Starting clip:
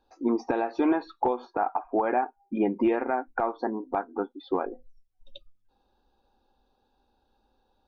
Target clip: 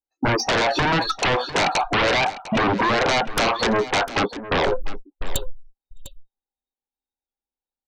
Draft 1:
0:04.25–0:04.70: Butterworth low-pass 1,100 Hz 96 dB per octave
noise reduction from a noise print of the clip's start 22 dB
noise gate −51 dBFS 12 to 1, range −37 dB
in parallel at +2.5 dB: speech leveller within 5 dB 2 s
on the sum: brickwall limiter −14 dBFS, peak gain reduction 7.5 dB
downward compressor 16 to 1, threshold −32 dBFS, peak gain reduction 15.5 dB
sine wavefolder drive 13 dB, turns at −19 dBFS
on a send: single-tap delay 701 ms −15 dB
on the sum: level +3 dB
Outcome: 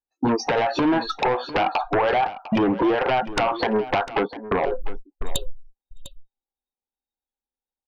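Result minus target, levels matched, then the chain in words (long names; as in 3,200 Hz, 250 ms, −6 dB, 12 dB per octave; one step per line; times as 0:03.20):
downward compressor: peak gain reduction +7 dB
0:04.25–0:04.70: Butterworth low-pass 1,100 Hz 96 dB per octave
noise reduction from a noise print of the clip's start 22 dB
noise gate −51 dBFS 12 to 1, range −37 dB
in parallel at +2.5 dB: speech leveller within 5 dB 2 s
on the sum: brickwall limiter −14 dBFS, peak gain reduction 7.5 dB
downward compressor 16 to 1, threshold −24.5 dBFS, peak gain reduction 8.5 dB
sine wavefolder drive 13 dB, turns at −19 dBFS
on a send: single-tap delay 701 ms −15 dB
on the sum: level +3 dB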